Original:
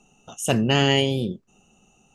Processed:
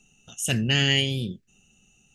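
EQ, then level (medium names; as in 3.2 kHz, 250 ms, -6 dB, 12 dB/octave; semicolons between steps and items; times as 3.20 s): FFT filter 110 Hz 0 dB, 1.1 kHz -16 dB, 1.7 kHz +1 dB; 0.0 dB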